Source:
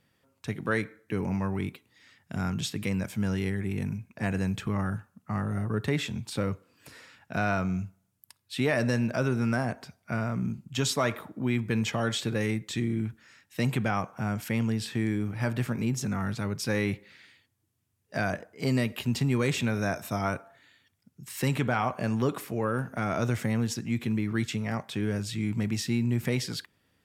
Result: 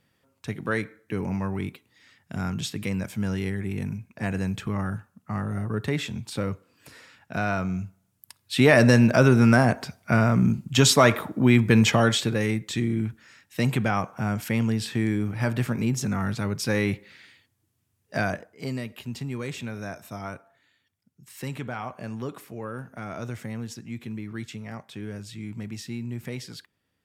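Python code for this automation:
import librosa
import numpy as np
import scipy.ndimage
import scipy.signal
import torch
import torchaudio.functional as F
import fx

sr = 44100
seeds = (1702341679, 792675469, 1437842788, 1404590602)

y = fx.gain(x, sr, db=fx.line((7.79, 1.0), (8.74, 10.0), (11.93, 10.0), (12.37, 3.5), (18.2, 3.5), (18.81, -6.5)))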